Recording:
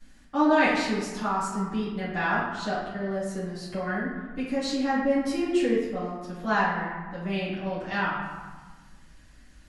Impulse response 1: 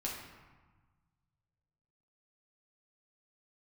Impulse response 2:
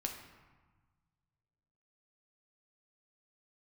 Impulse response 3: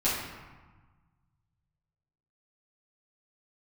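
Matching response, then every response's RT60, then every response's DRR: 3; 1.3, 1.3, 1.3 seconds; −4.5, 1.5, −11.5 decibels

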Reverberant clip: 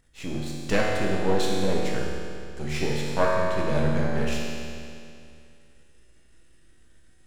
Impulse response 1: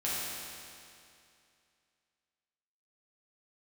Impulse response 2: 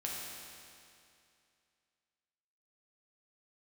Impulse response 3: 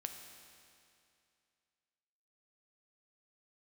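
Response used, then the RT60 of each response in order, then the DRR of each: 2; 2.5, 2.5, 2.5 seconds; −9.0, −4.0, 4.5 decibels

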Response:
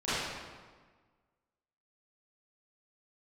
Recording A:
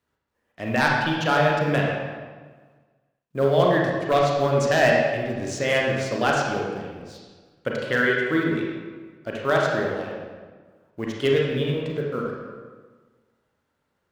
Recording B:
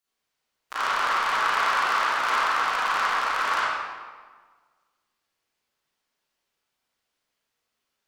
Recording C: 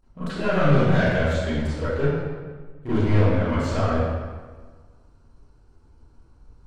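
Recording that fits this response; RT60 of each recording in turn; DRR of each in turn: C; 1.5, 1.5, 1.5 seconds; −2.5, −11.5, −16.0 decibels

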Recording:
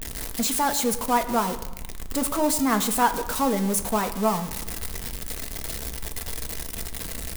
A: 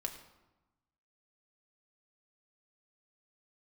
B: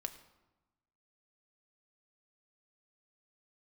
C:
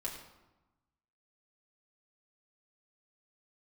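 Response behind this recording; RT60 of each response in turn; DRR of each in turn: B; 1.1, 1.1, 1.1 seconds; 2.5, 6.5, −4.0 decibels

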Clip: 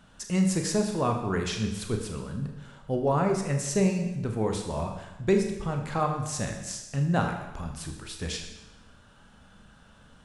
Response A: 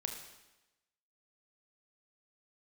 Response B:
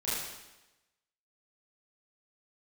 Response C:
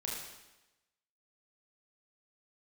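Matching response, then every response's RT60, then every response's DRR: A; 1.0, 1.0, 1.0 seconds; 3.5, −11.0, −4.0 decibels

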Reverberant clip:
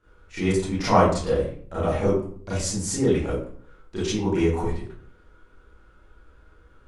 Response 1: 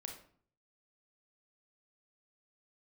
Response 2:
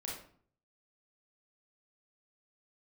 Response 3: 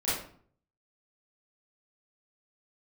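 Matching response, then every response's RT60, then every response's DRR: 3; 0.50, 0.50, 0.50 seconds; 2.5, −4.0, −12.0 decibels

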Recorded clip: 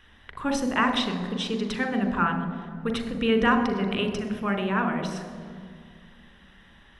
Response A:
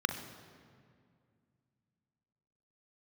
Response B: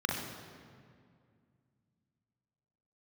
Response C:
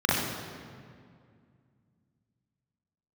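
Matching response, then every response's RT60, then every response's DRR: A; 2.2, 2.2, 2.2 seconds; 6.0, −2.0, −8.0 decibels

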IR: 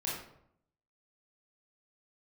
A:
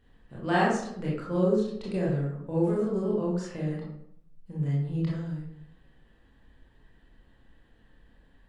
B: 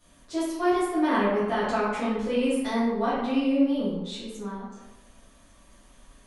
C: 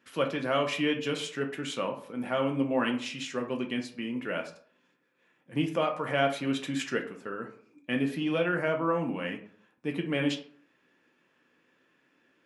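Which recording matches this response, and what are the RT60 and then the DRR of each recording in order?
A; 0.70, 1.0, 0.50 seconds; −6.0, −12.0, 2.5 decibels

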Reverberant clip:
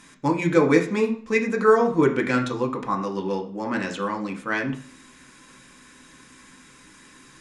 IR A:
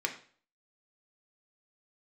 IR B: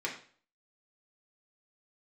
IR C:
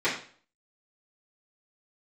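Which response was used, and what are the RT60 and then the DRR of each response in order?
A; 0.45, 0.45, 0.45 seconds; 2.0, −3.5, −12.5 decibels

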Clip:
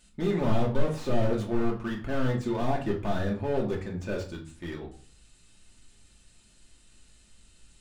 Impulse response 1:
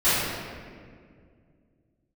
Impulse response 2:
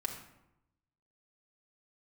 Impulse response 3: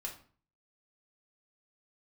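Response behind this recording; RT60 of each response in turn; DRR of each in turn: 3; 2.1, 0.85, 0.45 seconds; −17.5, −1.0, −2.5 decibels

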